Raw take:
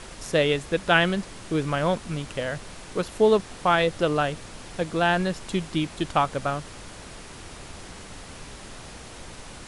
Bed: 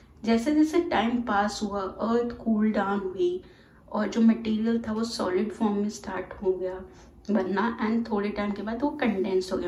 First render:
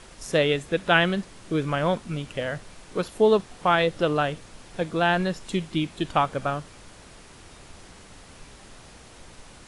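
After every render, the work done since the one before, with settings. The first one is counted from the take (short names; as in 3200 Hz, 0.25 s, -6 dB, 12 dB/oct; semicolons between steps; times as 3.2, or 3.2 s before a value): noise print and reduce 6 dB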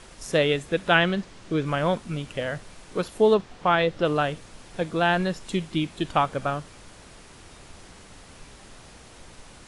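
0.95–1.66 LPF 7300 Hz; 3.34–4.05 air absorption 71 m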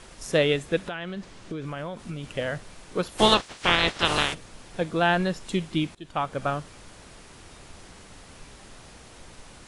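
0.83–2.24 compressor 16:1, threshold -29 dBFS; 3.17–4.33 spectral limiter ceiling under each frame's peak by 29 dB; 5.95–6.47 fade in, from -22.5 dB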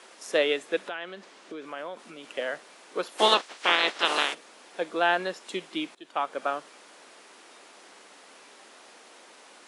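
Bessel high-pass 420 Hz, order 6; high shelf 5000 Hz -5 dB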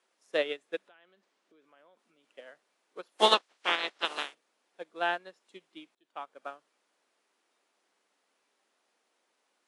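upward expander 2.5:1, over -34 dBFS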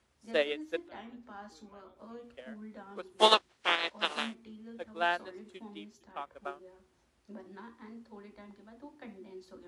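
add bed -23 dB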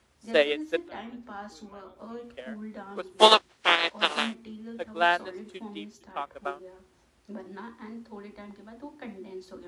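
gain +7 dB; limiter -3 dBFS, peak gain reduction 2.5 dB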